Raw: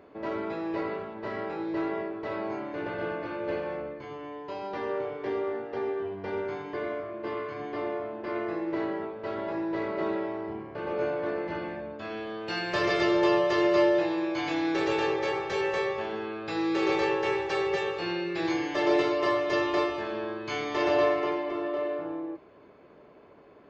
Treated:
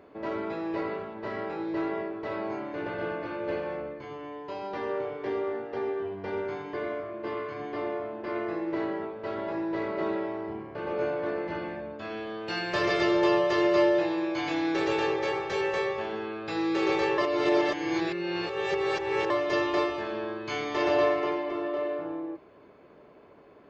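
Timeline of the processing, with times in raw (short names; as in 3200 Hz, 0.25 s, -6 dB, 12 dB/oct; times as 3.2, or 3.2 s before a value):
17.18–19.3 reverse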